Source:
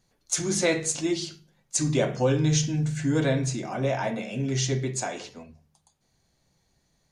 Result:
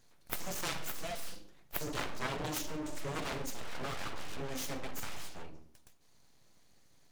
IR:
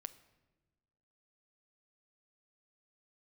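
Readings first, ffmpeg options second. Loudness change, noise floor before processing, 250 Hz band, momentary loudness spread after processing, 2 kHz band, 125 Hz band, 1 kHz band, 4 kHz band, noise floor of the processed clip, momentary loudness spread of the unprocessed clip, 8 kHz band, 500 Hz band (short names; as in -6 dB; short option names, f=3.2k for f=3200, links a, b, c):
-13.5 dB, -71 dBFS, -17.0 dB, 11 LU, -8.0 dB, -20.0 dB, -6.5 dB, -9.0 dB, -62 dBFS, 7 LU, -15.0 dB, -15.5 dB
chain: -filter_complex "[0:a]bandreject=f=60:t=h:w=6,bandreject=f=120:t=h:w=6,bandreject=f=180:t=h:w=6,bandreject=f=240:t=h:w=6,bandreject=f=300:t=h:w=6,bandreject=f=360:t=h:w=6,asplit=2[a][b];[b]acompressor=threshold=-32dB:ratio=6,volume=-1dB[c];[a][c]amix=inputs=2:normalize=0,aeval=exprs='abs(val(0))':c=same,aeval=exprs='0.355*(cos(1*acos(clip(val(0)/0.355,-1,1)))-cos(1*PI/2))+0.0891*(cos(4*acos(clip(val(0)/0.355,-1,1)))-cos(4*PI/2))+0.0355*(cos(8*acos(clip(val(0)/0.355,-1,1)))-cos(8*PI/2))':c=same[d];[1:a]atrim=start_sample=2205,atrim=end_sample=6174[e];[d][e]afir=irnorm=-1:irlink=0,volume=3dB"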